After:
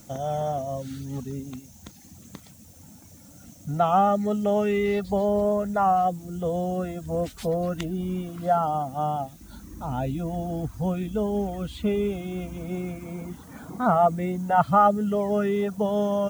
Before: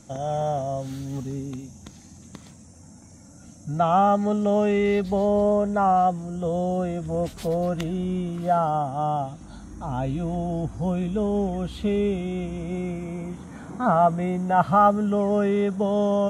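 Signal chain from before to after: reverb removal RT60 0.76 s; added noise blue -56 dBFS

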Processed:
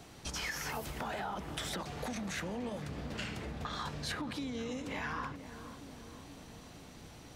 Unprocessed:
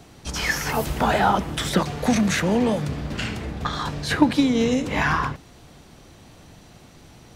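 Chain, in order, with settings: peak limiter -15 dBFS, peak gain reduction 11 dB; compression 5:1, threshold -32 dBFS, peak gain reduction 12 dB; bass shelf 460 Hz -4 dB; on a send: filtered feedback delay 478 ms, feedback 74%, low-pass 930 Hz, level -10 dB; on the sum: trim -3.5 dB

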